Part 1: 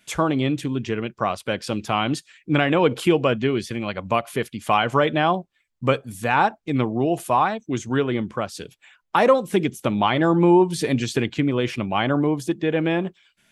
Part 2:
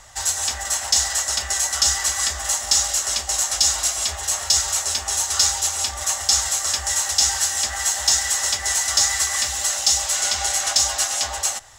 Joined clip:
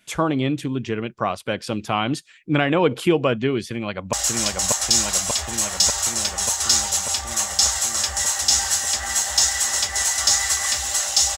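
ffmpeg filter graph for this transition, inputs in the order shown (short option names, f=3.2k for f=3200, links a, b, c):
-filter_complex "[0:a]apad=whole_dur=11.37,atrim=end=11.37,atrim=end=4.132[a];[1:a]atrim=start=2.828:end=10.07[b];[a][b]acrossfade=d=0.004:c1=hsin:c2=hsin,asplit=2[c][d];[d]afade=t=in:st=3.69:d=0.01,afade=t=out:st=4.13:d=0.01,aecho=0:1:590|1180|1770|2360|2950|3540|4130|4720|5310|5900|6490|7080:0.841395|0.631046|0.473285|0.354964|0.266223|0.199667|0.14975|0.112313|0.0842345|0.0631759|0.0473819|0.0355364[e];[c][e]amix=inputs=2:normalize=0"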